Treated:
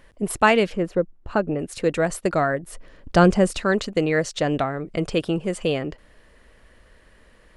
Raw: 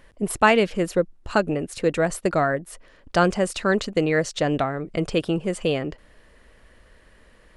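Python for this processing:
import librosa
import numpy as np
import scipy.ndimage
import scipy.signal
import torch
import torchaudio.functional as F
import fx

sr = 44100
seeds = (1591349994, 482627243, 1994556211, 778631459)

y = fx.lowpass(x, sr, hz=1200.0, slope=6, at=(0.74, 1.58), fade=0.02)
y = fx.low_shelf(y, sr, hz=420.0, db=8.5, at=(2.63, 3.6))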